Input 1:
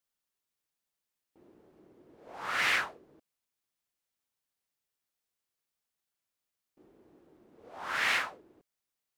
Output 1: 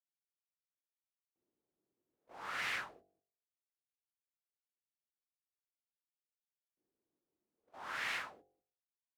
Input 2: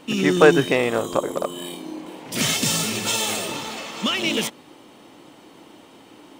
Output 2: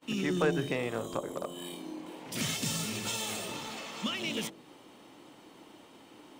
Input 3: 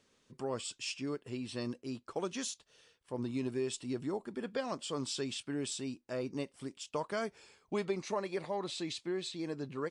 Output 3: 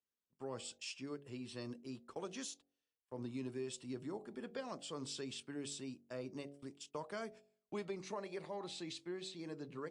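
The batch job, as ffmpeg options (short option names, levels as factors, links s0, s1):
-filter_complex "[0:a]agate=range=0.0708:threshold=0.00355:ratio=16:detection=peak,bandreject=f=47.19:t=h:w=4,bandreject=f=94.38:t=h:w=4,bandreject=f=141.57:t=h:w=4,bandreject=f=188.76:t=h:w=4,bandreject=f=235.95:t=h:w=4,bandreject=f=283.14:t=h:w=4,bandreject=f=330.33:t=h:w=4,bandreject=f=377.52:t=h:w=4,bandreject=f=424.71:t=h:w=4,bandreject=f=471.9:t=h:w=4,bandreject=f=519.09:t=h:w=4,bandreject=f=566.28:t=h:w=4,bandreject=f=613.47:t=h:w=4,bandreject=f=660.66:t=h:w=4,bandreject=f=707.85:t=h:w=4,bandreject=f=755.04:t=h:w=4,bandreject=f=802.23:t=h:w=4,acrossover=split=200[s0][s1];[s1]acompressor=threshold=0.0178:ratio=1.5[s2];[s0][s2]amix=inputs=2:normalize=0,volume=0.473"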